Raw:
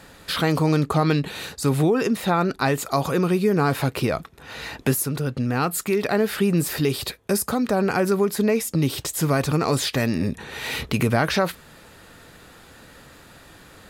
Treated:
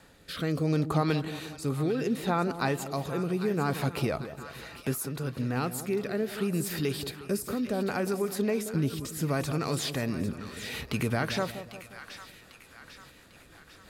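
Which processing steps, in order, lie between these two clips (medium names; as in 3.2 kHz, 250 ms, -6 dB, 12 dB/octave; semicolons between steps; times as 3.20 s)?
rotary cabinet horn 0.7 Hz, later 6 Hz, at 11.88 s; on a send: two-band feedback delay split 1 kHz, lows 179 ms, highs 798 ms, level -11 dB; on the sum: trim -6.5 dB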